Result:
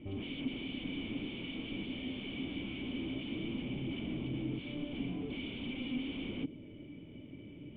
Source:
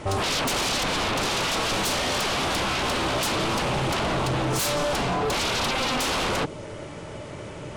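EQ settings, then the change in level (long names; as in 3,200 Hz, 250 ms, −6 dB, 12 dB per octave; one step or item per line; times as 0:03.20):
formant resonators in series i
−2.0 dB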